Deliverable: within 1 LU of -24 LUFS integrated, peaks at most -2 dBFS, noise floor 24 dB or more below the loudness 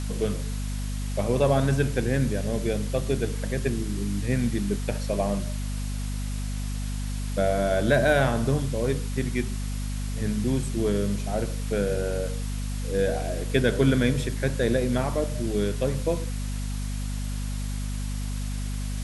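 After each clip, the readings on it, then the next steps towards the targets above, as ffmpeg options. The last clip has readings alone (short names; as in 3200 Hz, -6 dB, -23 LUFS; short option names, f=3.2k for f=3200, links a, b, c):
hum 50 Hz; harmonics up to 250 Hz; hum level -27 dBFS; noise floor -30 dBFS; noise floor target -51 dBFS; loudness -27.0 LUFS; peak -8.0 dBFS; loudness target -24.0 LUFS
-> -af "bandreject=f=50:t=h:w=6,bandreject=f=100:t=h:w=6,bandreject=f=150:t=h:w=6,bandreject=f=200:t=h:w=6,bandreject=f=250:t=h:w=6"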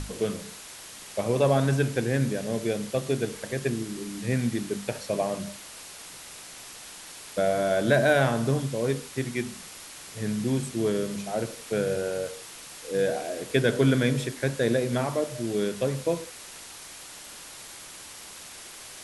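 hum none; noise floor -44 dBFS; noise floor target -52 dBFS
-> -af "afftdn=nr=8:nf=-44"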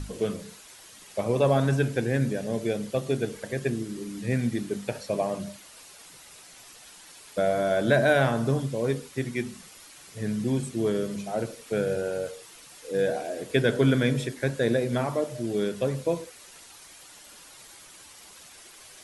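noise floor -50 dBFS; noise floor target -52 dBFS
-> -af "afftdn=nr=6:nf=-50"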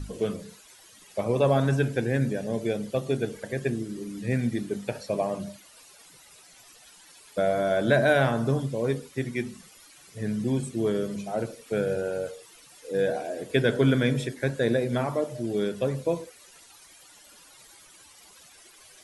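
noise floor -53 dBFS; loudness -27.5 LUFS; peak -8.5 dBFS; loudness target -24.0 LUFS
-> -af "volume=3.5dB"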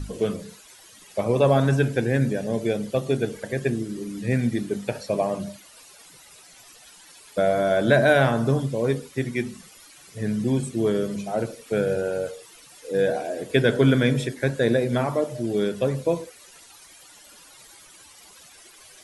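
loudness -24.0 LUFS; peak -5.0 dBFS; noise floor -50 dBFS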